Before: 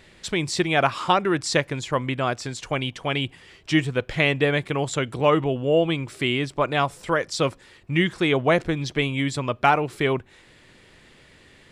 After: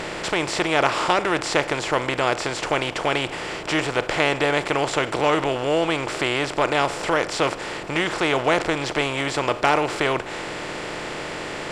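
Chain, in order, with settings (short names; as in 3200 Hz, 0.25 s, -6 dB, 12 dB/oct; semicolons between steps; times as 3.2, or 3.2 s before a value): per-bin compression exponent 0.4; dynamic EQ 180 Hz, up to -7 dB, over -34 dBFS, Q 1.2; gain -4.5 dB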